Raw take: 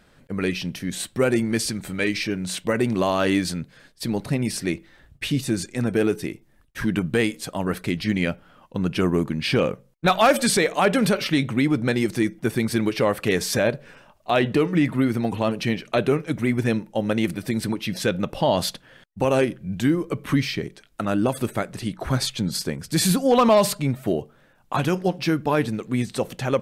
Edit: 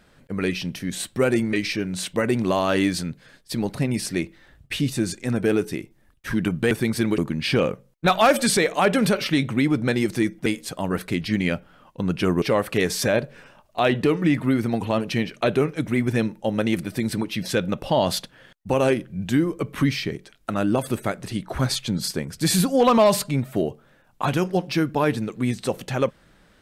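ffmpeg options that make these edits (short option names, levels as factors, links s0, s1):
-filter_complex "[0:a]asplit=6[s0][s1][s2][s3][s4][s5];[s0]atrim=end=1.532[s6];[s1]atrim=start=2.038:end=7.222[s7];[s2]atrim=start=12.458:end=12.932[s8];[s3]atrim=start=9.178:end=12.462[s9];[s4]atrim=start=7.218:end=9.182[s10];[s5]atrim=start=12.928[s11];[s6][s7]acrossfade=d=0.004:c1=hsin:c2=hsin[s12];[s12][s8]acrossfade=d=0.004:c1=hsin:c2=hsin[s13];[s13][s9]acrossfade=d=0.004:c1=hsin:c2=hsin[s14];[s14][s10]acrossfade=d=0.004:c1=hsin:c2=hsin[s15];[s15][s11]acrossfade=d=0.004:c1=hsin:c2=hsin"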